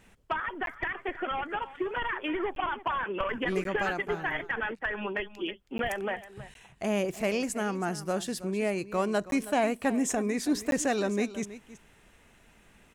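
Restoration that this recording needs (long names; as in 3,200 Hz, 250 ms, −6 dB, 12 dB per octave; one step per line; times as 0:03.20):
repair the gap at 0:00.66/0:02.55/0:03.64/0:05.78/0:06.54/0:09.31/0:10.71, 12 ms
echo removal 322 ms −15.5 dB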